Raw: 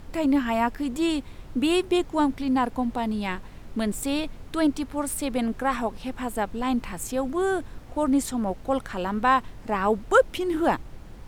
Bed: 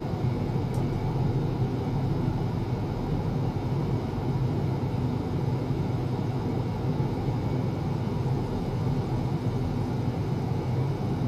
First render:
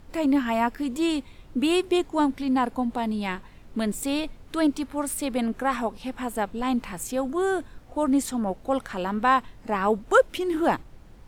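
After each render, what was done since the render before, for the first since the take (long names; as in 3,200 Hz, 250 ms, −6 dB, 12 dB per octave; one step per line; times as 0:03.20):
noise reduction from a noise print 6 dB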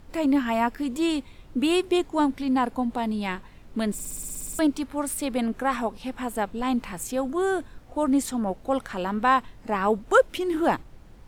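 0:03.93: stutter in place 0.06 s, 11 plays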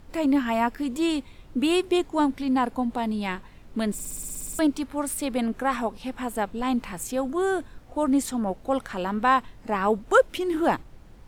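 no processing that can be heard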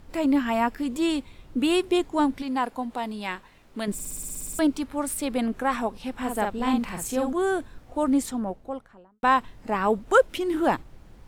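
0:02.42–0:03.88: low-shelf EQ 280 Hz −11 dB
0:06.16–0:07.33: double-tracking delay 47 ms −3.5 dB
0:08.06–0:09.23: fade out and dull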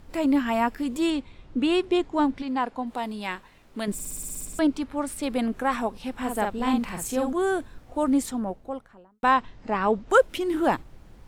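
0:01.10–0:02.87: high-frequency loss of the air 77 metres
0:04.45–0:05.23: high-shelf EQ 8,900 Hz −12 dB
0:09.31–0:10.10: low-pass filter 6,400 Hz 24 dB per octave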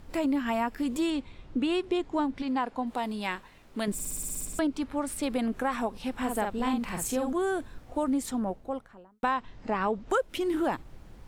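downward compressor 4 to 1, threshold −25 dBFS, peak gain reduction 10.5 dB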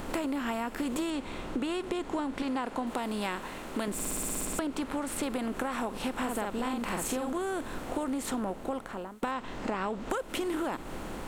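compressor on every frequency bin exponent 0.6
downward compressor, threshold −29 dBFS, peak gain reduction 9.5 dB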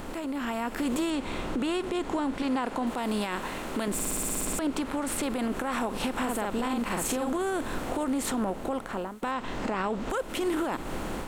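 brickwall limiter −26 dBFS, peak gain reduction 10 dB
automatic gain control gain up to 5.5 dB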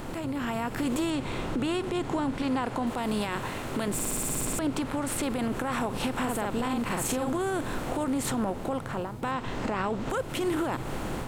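mix in bed −13.5 dB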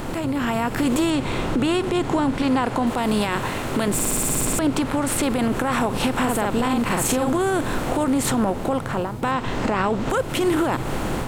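level +8 dB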